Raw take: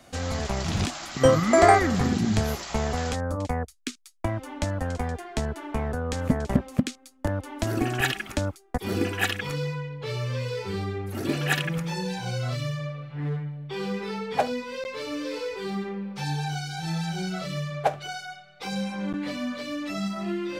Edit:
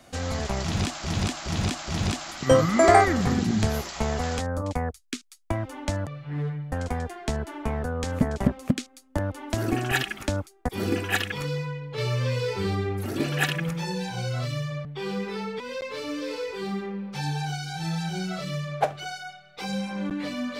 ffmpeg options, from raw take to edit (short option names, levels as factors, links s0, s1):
-filter_complex "[0:a]asplit=10[s0][s1][s2][s3][s4][s5][s6][s7][s8][s9];[s0]atrim=end=1.042[s10];[s1]atrim=start=0.618:end=1.042[s11];[s2]atrim=start=0.618:end=1.042[s12];[s3]atrim=start=0.618:end=4.812[s13];[s4]atrim=start=12.938:end=13.592[s14];[s5]atrim=start=4.808:end=10.072[s15];[s6]atrim=start=10.068:end=11.152,asetpts=PTS-STARTPTS,volume=1.5[s16];[s7]atrim=start=11.148:end=12.942[s17];[s8]atrim=start=13.588:end=14.342[s18];[s9]atrim=start=14.628[s19];[s10][s11]acrossfade=d=0.004:c1=hsin:c2=hsin[s20];[s20][s12]acrossfade=d=0.004:c1=hsin:c2=hsin[s21];[s21][s13]acrossfade=d=0.004:c1=hsin:c2=hsin[s22];[s22][s14]acrossfade=d=0.004:c1=hsin:c2=hsin[s23];[s23][s15]acrossfade=d=0.004:c1=hsin:c2=hsin[s24];[s24][s16]acrossfade=d=0.004:c1=hsin:c2=hsin[s25];[s25][s17]acrossfade=d=0.004:c1=hsin:c2=hsin[s26];[s26][s18]acrossfade=d=0.004:c1=hsin:c2=hsin[s27];[s27][s19]acrossfade=d=0.004:c1=hsin:c2=hsin"